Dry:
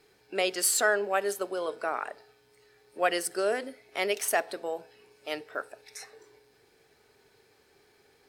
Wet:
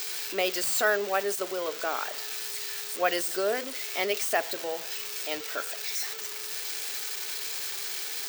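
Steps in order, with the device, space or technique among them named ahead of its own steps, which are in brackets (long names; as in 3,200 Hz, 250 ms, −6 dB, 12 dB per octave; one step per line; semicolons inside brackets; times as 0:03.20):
budget class-D amplifier (gap after every zero crossing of 0.051 ms; spike at every zero crossing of −20.5 dBFS)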